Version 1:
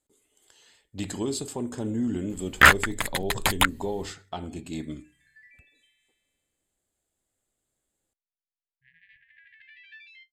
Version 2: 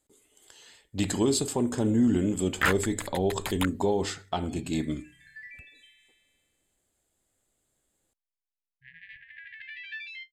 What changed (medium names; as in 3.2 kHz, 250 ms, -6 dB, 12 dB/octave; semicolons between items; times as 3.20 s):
speech +5.0 dB; first sound -11.0 dB; second sound +9.5 dB